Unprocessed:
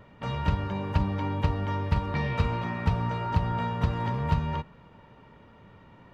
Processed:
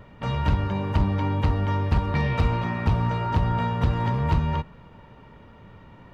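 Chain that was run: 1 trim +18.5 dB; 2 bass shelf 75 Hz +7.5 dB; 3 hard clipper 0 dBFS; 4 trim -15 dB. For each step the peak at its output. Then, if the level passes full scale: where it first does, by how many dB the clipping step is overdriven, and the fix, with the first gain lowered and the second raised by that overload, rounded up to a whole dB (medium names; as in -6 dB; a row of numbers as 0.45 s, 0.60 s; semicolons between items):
+5.5 dBFS, +9.0 dBFS, 0.0 dBFS, -15.0 dBFS; step 1, 9.0 dB; step 1 +9.5 dB, step 4 -6 dB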